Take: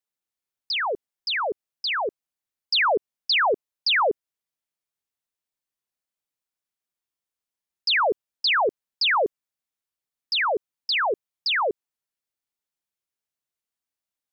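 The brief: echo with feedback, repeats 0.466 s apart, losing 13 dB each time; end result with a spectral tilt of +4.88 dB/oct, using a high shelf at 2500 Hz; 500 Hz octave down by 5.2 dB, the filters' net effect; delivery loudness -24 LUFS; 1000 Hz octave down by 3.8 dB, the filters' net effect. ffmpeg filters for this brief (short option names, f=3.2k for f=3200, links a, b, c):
-af "equalizer=f=500:t=o:g=-5.5,equalizer=f=1k:t=o:g=-5,highshelf=f=2.5k:g=8.5,aecho=1:1:466|932|1398:0.224|0.0493|0.0108,volume=-3.5dB"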